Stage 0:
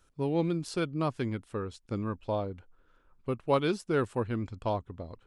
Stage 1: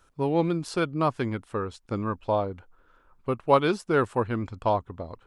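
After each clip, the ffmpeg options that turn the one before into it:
ffmpeg -i in.wav -af "equalizer=frequency=1000:width=0.73:gain=6.5,volume=2.5dB" out.wav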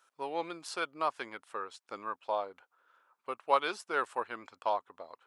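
ffmpeg -i in.wav -af "highpass=730,volume=-3.5dB" out.wav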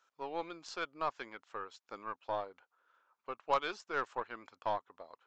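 ffmpeg -i in.wav -af "aeval=exprs='0.237*(cos(1*acos(clip(val(0)/0.237,-1,1)))-cos(1*PI/2))+0.0168*(cos(5*acos(clip(val(0)/0.237,-1,1)))-cos(5*PI/2))+0.00944*(cos(6*acos(clip(val(0)/0.237,-1,1)))-cos(6*PI/2))+0.00944*(cos(7*acos(clip(val(0)/0.237,-1,1)))-cos(7*PI/2))+0.015*(cos(8*acos(clip(val(0)/0.237,-1,1)))-cos(8*PI/2))':channel_layout=same,aresample=16000,aresample=44100,volume=-5dB" out.wav

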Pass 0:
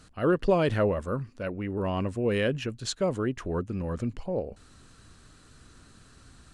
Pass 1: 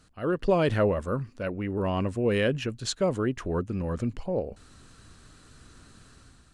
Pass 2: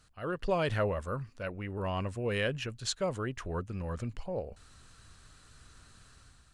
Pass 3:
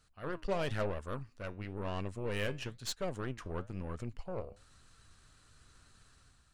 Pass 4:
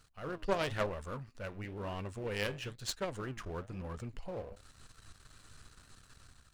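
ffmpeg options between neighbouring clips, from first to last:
ffmpeg -i in.wav -af "dynaudnorm=framelen=120:gausssize=7:maxgain=7dB,volume=-5.5dB" out.wav
ffmpeg -i in.wav -af "equalizer=frequency=280:width=0.8:gain=-9,volume=-2.5dB" out.wav
ffmpeg -i in.wav -af "aeval=exprs='0.126*(cos(1*acos(clip(val(0)/0.126,-1,1)))-cos(1*PI/2))+0.0112*(cos(8*acos(clip(val(0)/0.126,-1,1)))-cos(8*PI/2))':channel_layout=same,flanger=delay=2.2:depth=8:regen=81:speed=1:shape=sinusoidal,volume=-1dB" out.wav
ffmpeg -i in.wav -af "aeval=exprs='if(lt(val(0),0),0.251*val(0),val(0))':channel_layout=same,volume=7.5dB" out.wav

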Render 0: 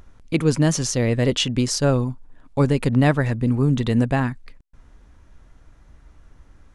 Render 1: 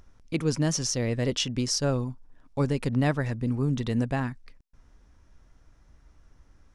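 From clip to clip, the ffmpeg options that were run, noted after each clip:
ffmpeg -i in.wav -af "equalizer=frequency=5500:width=4.2:gain=8,volume=-7.5dB" out.wav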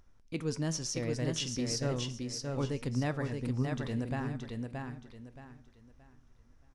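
ffmpeg -i in.wav -filter_complex "[0:a]flanger=delay=7.9:depth=9.3:regen=83:speed=0.34:shape=triangular,asplit=2[link_01][link_02];[link_02]aecho=0:1:624|1248|1872|2496:0.631|0.183|0.0531|0.0154[link_03];[link_01][link_03]amix=inputs=2:normalize=0,volume=-3.5dB" out.wav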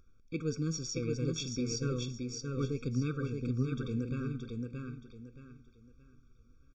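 ffmpeg -i in.wav -af "aresample=16000,aresample=44100,afftfilt=real='re*eq(mod(floor(b*sr/1024/540),2),0)':imag='im*eq(mod(floor(b*sr/1024/540),2),0)':win_size=1024:overlap=0.75" out.wav

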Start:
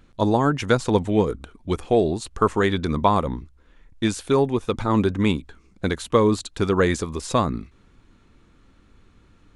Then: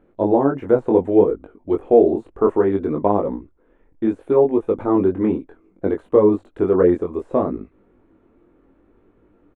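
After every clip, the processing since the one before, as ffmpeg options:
ffmpeg -i in.wav -af "deesser=0.95,firequalizer=gain_entry='entry(130,0);entry(330,15);entry(620,13);entry(1100,4);entry(2200,-1);entry(4800,-21);entry(8400,-13)':delay=0.05:min_phase=1,flanger=delay=19.5:depth=3.2:speed=0.65,volume=-4.5dB" out.wav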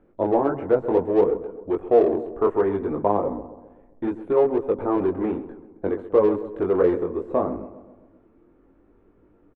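ffmpeg -i in.wav -filter_complex "[0:a]lowpass=frequency=2300:poles=1,acrossover=split=370[link_01][link_02];[link_01]asoftclip=type=tanh:threshold=-27.5dB[link_03];[link_03][link_02]amix=inputs=2:normalize=0,asplit=2[link_04][link_05];[link_05]adelay=131,lowpass=frequency=1500:poles=1,volume=-13dB,asplit=2[link_06][link_07];[link_07]adelay=131,lowpass=frequency=1500:poles=1,volume=0.55,asplit=2[link_08][link_09];[link_09]adelay=131,lowpass=frequency=1500:poles=1,volume=0.55,asplit=2[link_10][link_11];[link_11]adelay=131,lowpass=frequency=1500:poles=1,volume=0.55,asplit=2[link_12][link_13];[link_13]adelay=131,lowpass=frequency=1500:poles=1,volume=0.55,asplit=2[link_14][link_15];[link_15]adelay=131,lowpass=frequency=1500:poles=1,volume=0.55[link_16];[link_04][link_06][link_08][link_10][link_12][link_14][link_16]amix=inputs=7:normalize=0,volume=-1.5dB" out.wav

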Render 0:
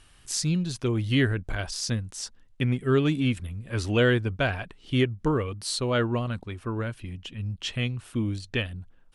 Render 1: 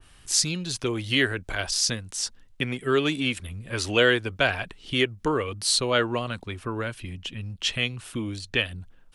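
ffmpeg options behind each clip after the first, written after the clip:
ffmpeg -i in.wav -filter_complex "[0:a]acrossover=split=320|1200[link_01][link_02][link_03];[link_01]acompressor=threshold=-36dB:ratio=6[link_04];[link_04][link_02][link_03]amix=inputs=3:normalize=0,adynamicequalizer=threshold=0.00708:dfrequency=1900:dqfactor=0.7:tfrequency=1900:tqfactor=0.7:attack=5:release=100:ratio=0.375:range=2.5:mode=boostabove:tftype=highshelf,volume=3dB" out.wav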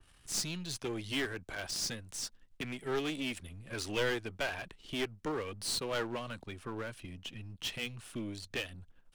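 ffmpeg -i in.wav -filter_complex "[0:a]aeval=exprs='if(lt(val(0),0),0.447*val(0),val(0))':channel_layout=same,acrossover=split=110[link_01][link_02];[link_01]acompressor=threshold=-44dB:ratio=6[link_03];[link_03][link_02]amix=inputs=2:normalize=0,aeval=exprs='clip(val(0),-1,0.0422)':channel_layout=same,volume=-6dB" out.wav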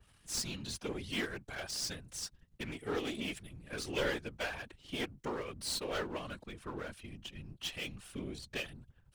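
ffmpeg -i in.wav -af "afftfilt=real='hypot(re,im)*cos(2*PI*random(0))':imag='hypot(re,im)*sin(2*PI*random(1))':win_size=512:overlap=0.75,volume=4dB" out.wav

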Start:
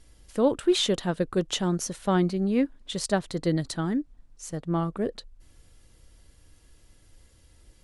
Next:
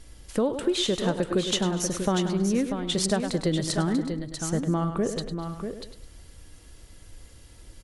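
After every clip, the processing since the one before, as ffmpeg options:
ffmpeg -i in.wav -filter_complex "[0:a]asplit=2[link_01][link_02];[link_02]aecho=0:1:103|206|309:0.251|0.0728|0.0211[link_03];[link_01][link_03]amix=inputs=2:normalize=0,acompressor=threshold=-29dB:ratio=6,asplit=2[link_04][link_05];[link_05]aecho=0:1:244|641:0.106|0.422[link_06];[link_04][link_06]amix=inputs=2:normalize=0,volume=7dB" out.wav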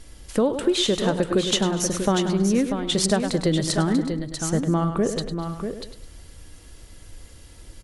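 ffmpeg -i in.wav -af "bandreject=frequency=59.24:width_type=h:width=4,bandreject=frequency=118.48:width_type=h:width=4,bandreject=frequency=177.72:width_type=h:width=4,volume=4dB" out.wav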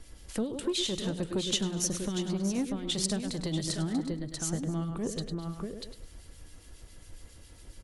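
ffmpeg -i in.wav -filter_complex "[0:a]acrossover=split=390|2400[link_01][link_02][link_03];[link_01]asoftclip=type=tanh:threshold=-21.5dB[link_04];[link_02]acompressor=threshold=-38dB:ratio=6[link_05];[link_04][link_05][link_03]amix=inputs=3:normalize=0,acrossover=split=1900[link_06][link_07];[link_06]aeval=exprs='val(0)*(1-0.5/2+0.5/2*cos(2*PI*7.3*n/s))':channel_layout=same[link_08];[link_07]aeval=exprs='val(0)*(1-0.5/2-0.5/2*cos(2*PI*7.3*n/s))':channel_layout=same[link_09];[link_08][link_09]amix=inputs=2:normalize=0,volume=-3.5dB" out.wav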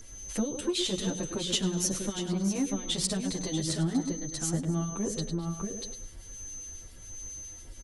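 ffmpeg -i in.wav -filter_complex "[0:a]asoftclip=type=hard:threshold=-12.5dB,aeval=exprs='val(0)+0.00708*sin(2*PI*6200*n/s)':channel_layout=same,asplit=2[link_01][link_02];[link_02]adelay=9.2,afreqshift=1.3[link_03];[link_01][link_03]amix=inputs=2:normalize=1,volume=4dB" out.wav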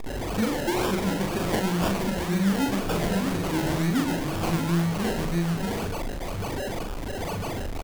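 ffmpeg -i in.wav -filter_complex "[0:a]aeval=exprs='val(0)+0.5*0.0376*sgn(val(0))':channel_layout=same,acrusher=samples=30:mix=1:aa=0.000001:lfo=1:lforange=18:lforate=2,asplit=2[link_01][link_02];[link_02]adelay=41,volume=-3.5dB[link_03];[link_01][link_03]amix=inputs=2:normalize=0" out.wav

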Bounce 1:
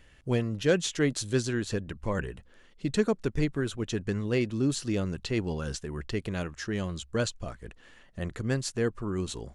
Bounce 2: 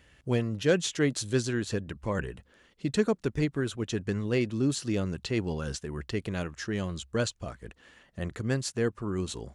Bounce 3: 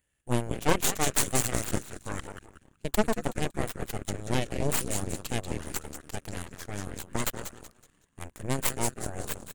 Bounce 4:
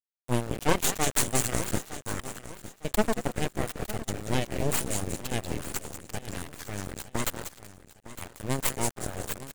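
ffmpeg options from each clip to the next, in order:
ffmpeg -i in.wav -af "highpass=49" out.wav
ffmpeg -i in.wav -filter_complex "[0:a]aexciter=amount=8.2:drive=3:freq=7300,asplit=7[link_01][link_02][link_03][link_04][link_05][link_06][link_07];[link_02]adelay=187,afreqshift=-78,volume=-6.5dB[link_08];[link_03]adelay=374,afreqshift=-156,volume=-12.3dB[link_09];[link_04]adelay=561,afreqshift=-234,volume=-18.2dB[link_10];[link_05]adelay=748,afreqshift=-312,volume=-24dB[link_11];[link_06]adelay=935,afreqshift=-390,volume=-29.9dB[link_12];[link_07]adelay=1122,afreqshift=-468,volume=-35.7dB[link_13];[link_01][link_08][link_09][link_10][link_11][link_12][link_13]amix=inputs=7:normalize=0,aeval=exprs='0.501*(cos(1*acos(clip(val(0)/0.501,-1,1)))-cos(1*PI/2))+0.1*(cos(3*acos(clip(val(0)/0.501,-1,1)))-cos(3*PI/2))+0.0224*(cos(5*acos(clip(val(0)/0.501,-1,1)))-cos(5*PI/2))+0.0398*(cos(7*acos(clip(val(0)/0.501,-1,1)))-cos(7*PI/2))+0.0631*(cos(8*acos(clip(val(0)/0.501,-1,1)))-cos(8*PI/2))':channel_layout=same,volume=3dB" out.wav
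ffmpeg -i in.wav -af "aeval=exprs='val(0)*gte(abs(val(0)),0.0178)':channel_layout=same,aecho=1:1:908|1816|2724:0.178|0.0658|0.0243" out.wav

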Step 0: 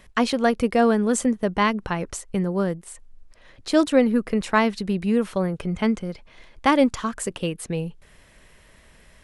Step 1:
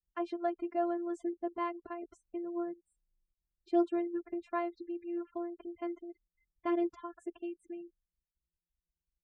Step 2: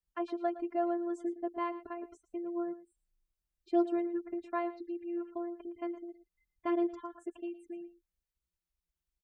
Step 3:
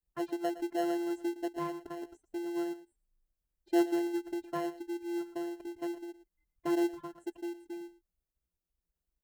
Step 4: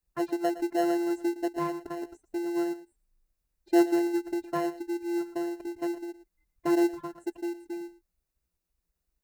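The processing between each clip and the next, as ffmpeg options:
ffmpeg -i in.wav -af "afftfilt=real='hypot(re,im)*cos(PI*b)':imag='0':win_size=512:overlap=0.75,afftfilt=real='re*gte(hypot(re,im),0.02)':imag='im*gte(hypot(re,im),0.02)':win_size=1024:overlap=0.75,bandpass=frequency=410:width_type=q:width=0.72:csg=0,volume=-7.5dB" out.wav
ffmpeg -i in.wav -af "aecho=1:1:113:0.168" out.wav
ffmpeg -i in.wav -filter_complex "[0:a]equalizer=frequency=3300:width=0.38:gain=-7.5,asplit=2[link_01][link_02];[link_02]acrusher=samples=37:mix=1:aa=0.000001,volume=-8dB[link_03];[link_01][link_03]amix=inputs=2:normalize=0" out.wav
ffmpeg -i in.wav -af "bandreject=frequency=3200:width=7.8,volume=5.5dB" out.wav

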